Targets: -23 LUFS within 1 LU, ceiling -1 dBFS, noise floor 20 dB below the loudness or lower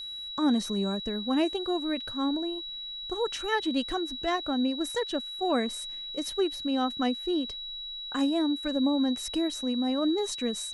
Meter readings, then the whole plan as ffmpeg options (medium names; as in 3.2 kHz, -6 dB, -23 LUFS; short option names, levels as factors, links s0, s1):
steady tone 3.9 kHz; tone level -36 dBFS; loudness -29.5 LUFS; peak level -14.0 dBFS; loudness target -23.0 LUFS
-> -af "bandreject=f=3900:w=30"
-af "volume=2.11"